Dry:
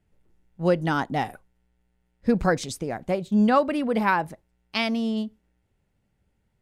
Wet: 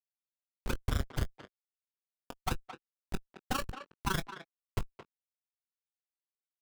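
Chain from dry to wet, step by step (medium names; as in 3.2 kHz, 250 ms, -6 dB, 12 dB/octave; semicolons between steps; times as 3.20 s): local Wiener filter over 41 samples; Chebyshev high-pass 250 Hz, order 8; high-order bell 1 kHz +12 dB; band-stop 2.4 kHz, Q 14; Schmitt trigger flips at -13.5 dBFS; touch-sensitive flanger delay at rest 11.9 ms, full sweep at -19 dBFS; AM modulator 27 Hz, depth 90%; doubling 21 ms -13.5 dB; speakerphone echo 220 ms, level -10 dB; trim -2 dB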